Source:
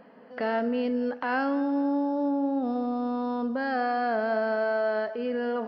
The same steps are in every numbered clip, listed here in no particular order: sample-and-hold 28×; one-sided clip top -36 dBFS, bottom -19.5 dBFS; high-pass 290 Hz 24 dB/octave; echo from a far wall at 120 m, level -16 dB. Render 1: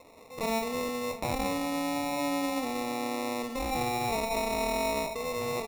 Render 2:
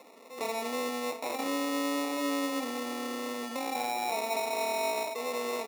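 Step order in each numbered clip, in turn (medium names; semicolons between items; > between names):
high-pass > sample-and-hold > one-sided clip > echo from a far wall; sample-and-hold > echo from a far wall > one-sided clip > high-pass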